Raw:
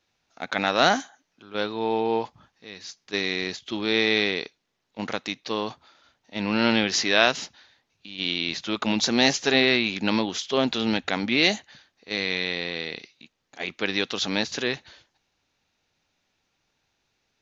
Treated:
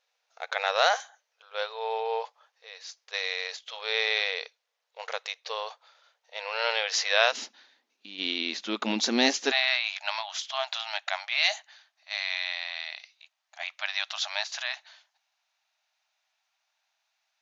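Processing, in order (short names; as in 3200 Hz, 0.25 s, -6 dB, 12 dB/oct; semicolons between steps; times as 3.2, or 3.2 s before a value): brick-wall FIR high-pass 440 Hz, from 7.32 s 200 Hz, from 9.5 s 590 Hz; gain -3 dB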